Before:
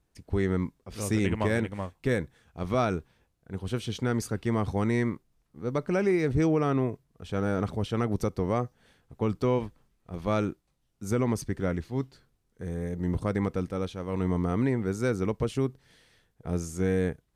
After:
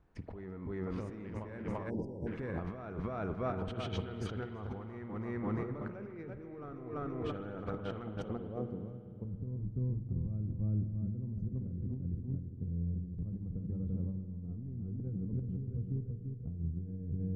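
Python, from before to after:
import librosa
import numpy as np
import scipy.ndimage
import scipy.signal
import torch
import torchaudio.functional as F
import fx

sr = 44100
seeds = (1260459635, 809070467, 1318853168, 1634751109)

y = 10.0 ** (-17.5 / 20.0) * np.tanh(x / 10.0 ** (-17.5 / 20.0))
y = fx.echo_feedback(y, sr, ms=338, feedback_pct=44, wet_db=-7.0)
y = fx.filter_sweep_lowpass(y, sr, from_hz=1400.0, to_hz=140.0, start_s=8.16, end_s=8.91, q=0.98)
y = fx.riaa(y, sr, side='recording', at=(8.56, 9.25))
y = fx.over_compress(y, sr, threshold_db=-38.0, ratio=-1.0)
y = fx.high_shelf(y, sr, hz=4200.0, db=12.0)
y = fx.rev_spring(y, sr, rt60_s=2.3, pass_ms=(47,), chirp_ms=35, drr_db=9.0)
y = fx.spec_erase(y, sr, start_s=1.9, length_s=0.37, low_hz=1000.0, high_hz=4700.0)
y = y * 10.0 ** (-2.0 / 20.0)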